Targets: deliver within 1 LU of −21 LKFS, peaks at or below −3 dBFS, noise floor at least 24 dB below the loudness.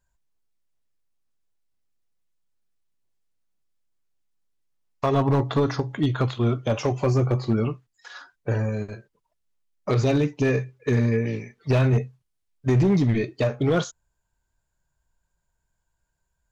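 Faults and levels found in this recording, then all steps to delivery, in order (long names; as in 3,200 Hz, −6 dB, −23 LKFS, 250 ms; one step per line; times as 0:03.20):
share of clipped samples 0.9%; peaks flattened at −14.5 dBFS; integrated loudness −23.5 LKFS; sample peak −14.5 dBFS; target loudness −21.0 LKFS
→ clipped peaks rebuilt −14.5 dBFS
level +2.5 dB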